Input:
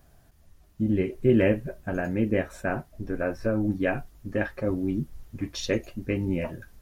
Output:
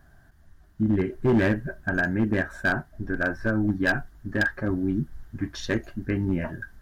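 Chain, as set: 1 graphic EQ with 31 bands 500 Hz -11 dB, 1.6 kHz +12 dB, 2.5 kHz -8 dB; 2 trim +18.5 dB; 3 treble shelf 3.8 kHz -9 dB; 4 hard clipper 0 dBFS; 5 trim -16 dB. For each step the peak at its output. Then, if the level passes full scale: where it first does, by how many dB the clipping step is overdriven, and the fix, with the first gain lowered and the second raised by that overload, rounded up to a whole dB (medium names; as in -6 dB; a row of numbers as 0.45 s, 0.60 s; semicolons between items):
-9.0 dBFS, +9.5 dBFS, +8.5 dBFS, 0.0 dBFS, -16.0 dBFS; step 2, 8.5 dB; step 2 +9.5 dB, step 5 -7 dB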